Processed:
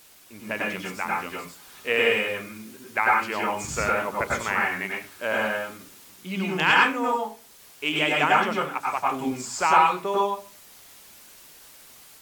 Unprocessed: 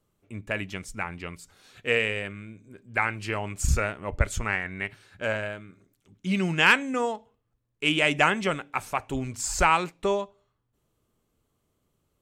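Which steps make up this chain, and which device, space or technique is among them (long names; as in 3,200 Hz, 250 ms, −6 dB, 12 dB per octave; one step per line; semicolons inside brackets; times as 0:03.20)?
filmed off a television (band-pass filter 230–6,900 Hz; parametric band 980 Hz +5.5 dB 0.56 octaves; convolution reverb RT60 0.35 s, pre-delay 92 ms, DRR −3.5 dB; white noise bed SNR 25 dB; automatic gain control gain up to 4 dB; level −4 dB; AAC 96 kbit/s 44,100 Hz)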